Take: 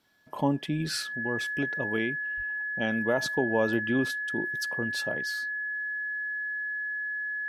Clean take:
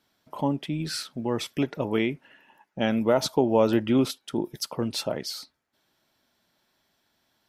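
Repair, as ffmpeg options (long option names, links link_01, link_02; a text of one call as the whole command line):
ffmpeg -i in.wav -filter_complex "[0:a]bandreject=frequency=1700:width=30,asplit=3[link_01][link_02][link_03];[link_01]afade=type=out:start_time=2.36:duration=0.02[link_04];[link_02]highpass=frequency=140:width=0.5412,highpass=frequency=140:width=1.3066,afade=type=in:start_time=2.36:duration=0.02,afade=type=out:start_time=2.48:duration=0.02[link_05];[link_03]afade=type=in:start_time=2.48:duration=0.02[link_06];[link_04][link_05][link_06]amix=inputs=3:normalize=0,asetnsamples=nb_out_samples=441:pad=0,asendcmd='1.15 volume volume 5.5dB',volume=0dB" out.wav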